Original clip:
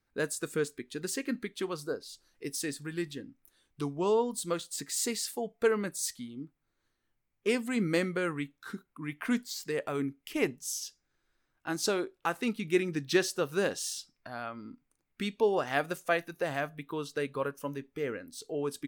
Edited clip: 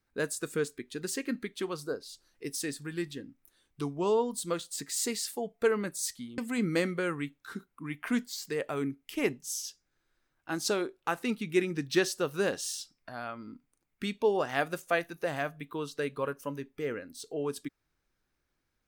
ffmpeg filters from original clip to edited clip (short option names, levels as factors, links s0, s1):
-filter_complex "[0:a]asplit=2[s0][s1];[s0]atrim=end=6.382[s2];[s1]atrim=start=7.558[s3];[s2][s3]acrossfade=d=0.004:c1=hsin:c2=hsin"